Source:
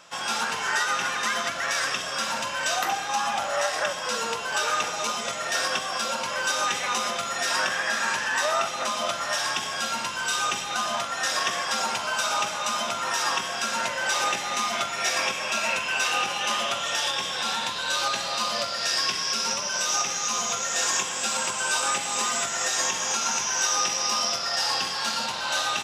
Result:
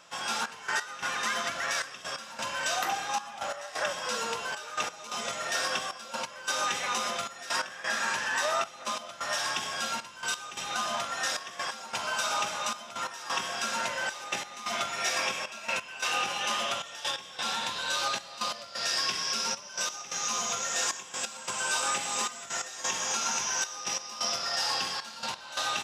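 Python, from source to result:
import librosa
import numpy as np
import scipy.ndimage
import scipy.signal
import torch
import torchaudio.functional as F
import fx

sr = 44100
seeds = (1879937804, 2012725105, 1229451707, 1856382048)

y = fx.step_gate(x, sr, bpm=132, pattern='xxxx..x..xxx', floor_db=-12.0, edge_ms=4.5)
y = F.gain(torch.from_numpy(y), -4.0).numpy()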